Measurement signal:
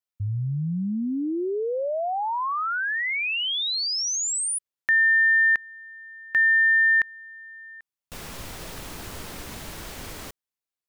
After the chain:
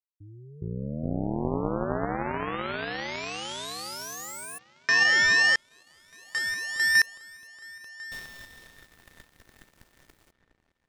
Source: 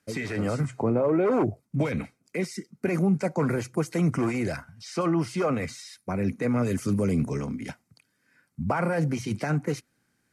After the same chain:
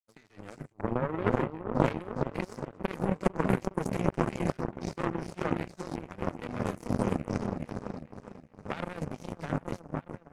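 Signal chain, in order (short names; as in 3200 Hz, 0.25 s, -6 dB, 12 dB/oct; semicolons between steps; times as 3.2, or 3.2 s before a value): repeats that get brighter 0.413 s, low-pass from 400 Hz, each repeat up 1 oct, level 0 dB; power-law curve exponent 3; gain +4 dB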